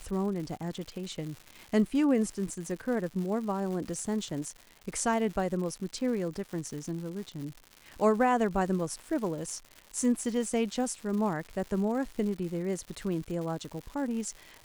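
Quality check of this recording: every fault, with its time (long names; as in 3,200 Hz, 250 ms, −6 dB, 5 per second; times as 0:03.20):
surface crackle 240 per second −38 dBFS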